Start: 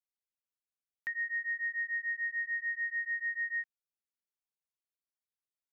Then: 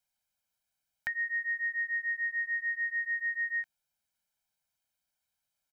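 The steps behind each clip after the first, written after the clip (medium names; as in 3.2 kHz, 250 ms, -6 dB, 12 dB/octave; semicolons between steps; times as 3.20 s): comb 1.3 ms, depth 87%; trim +7.5 dB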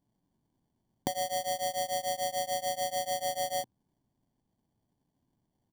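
sample-rate reducer 1.3 kHz, jitter 0%; ten-band graphic EQ 125 Hz +7 dB, 250 Hz +6 dB, 500 Hz -9 dB, 1 kHz +4 dB, 2 kHz -11 dB; trim +4.5 dB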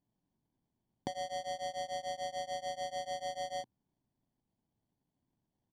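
low-pass 5.2 kHz 12 dB/octave; trim -6 dB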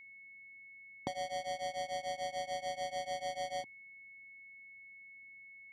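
level-controlled noise filter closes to 900 Hz, open at -40 dBFS; whistle 2.2 kHz -52 dBFS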